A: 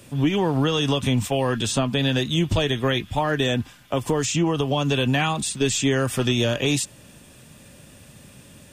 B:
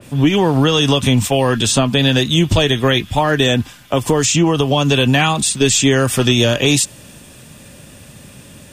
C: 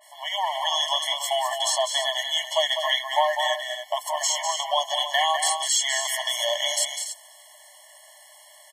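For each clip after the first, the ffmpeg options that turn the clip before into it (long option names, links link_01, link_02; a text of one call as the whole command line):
ffmpeg -i in.wav -af "adynamicequalizer=threshold=0.0141:dfrequency=3000:dqfactor=0.7:tfrequency=3000:tqfactor=0.7:attack=5:release=100:ratio=0.375:range=1.5:mode=boostabove:tftype=highshelf,volume=7.5dB" out.wav
ffmpeg -i in.wav -af "aecho=1:1:201.2|285.7:0.447|0.316,afftfilt=real='re*eq(mod(floor(b*sr/1024/570),2),1)':imag='im*eq(mod(floor(b*sr/1024/570),2),1)':win_size=1024:overlap=0.75,volume=-4dB" out.wav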